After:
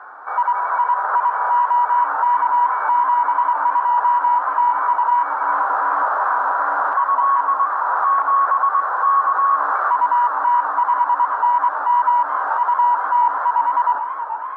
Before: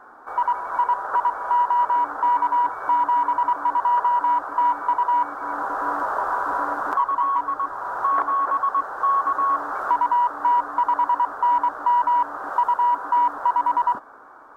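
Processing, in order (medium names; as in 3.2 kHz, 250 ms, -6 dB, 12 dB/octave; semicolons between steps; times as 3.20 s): harmonic-percussive split harmonic +4 dB; peak limiter -17 dBFS, peak gain reduction 8.5 dB; band-pass 750–2400 Hz; modulated delay 427 ms, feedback 68%, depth 126 cents, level -10 dB; trim +7.5 dB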